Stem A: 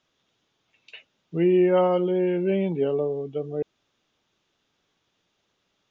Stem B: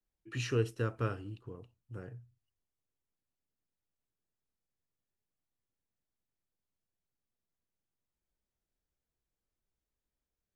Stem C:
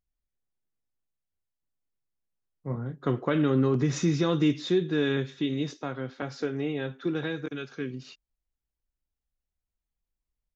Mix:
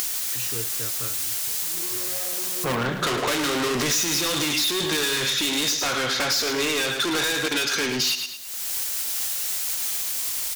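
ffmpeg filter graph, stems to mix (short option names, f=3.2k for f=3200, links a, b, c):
-filter_complex "[0:a]asoftclip=type=tanh:threshold=-26.5dB,adelay=300,volume=-6dB,asplit=2[a][b];[b]volume=-9dB[c];[1:a]volume=-5.5dB,asplit=2[d][e];[2:a]bass=f=250:g=-3,treble=f=4k:g=4,acompressor=mode=upward:threshold=-35dB:ratio=2.5,asplit=2[f][g];[g]highpass=f=720:p=1,volume=37dB,asoftclip=type=tanh:threshold=-13dB[h];[f][h]amix=inputs=2:normalize=0,lowpass=f=3.8k:p=1,volume=-6dB,volume=-3.5dB,asplit=2[i][j];[j]volume=-9.5dB[k];[e]apad=whole_len=273545[l];[a][l]sidechaincompress=threshold=-57dB:ratio=8:attack=16:release=1000[m];[c][k]amix=inputs=2:normalize=0,aecho=0:1:108|216|324|432:1|0.31|0.0961|0.0298[n];[m][d][i][n]amix=inputs=4:normalize=0,acompressor=mode=upward:threshold=-42dB:ratio=2.5,crystalizer=i=5.5:c=0,acompressor=threshold=-21dB:ratio=6"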